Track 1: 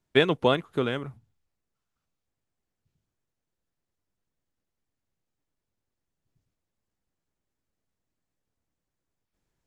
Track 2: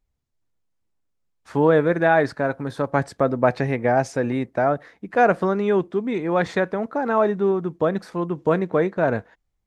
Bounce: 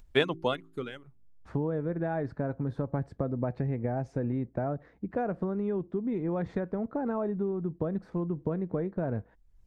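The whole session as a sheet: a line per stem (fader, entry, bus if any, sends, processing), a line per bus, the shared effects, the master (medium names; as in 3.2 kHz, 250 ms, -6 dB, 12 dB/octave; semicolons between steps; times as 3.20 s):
-2.5 dB, 0.00 s, no send, reverb removal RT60 1.8 s; de-hum 54.18 Hz, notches 7; gain riding 2 s; auto duck -14 dB, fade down 1.40 s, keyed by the second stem
-10.0 dB, 0.00 s, no send, tilt EQ -4.5 dB/octave; compression 10:1, threshold -17 dBFS, peak gain reduction 12 dB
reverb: none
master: upward compressor, threshold -46 dBFS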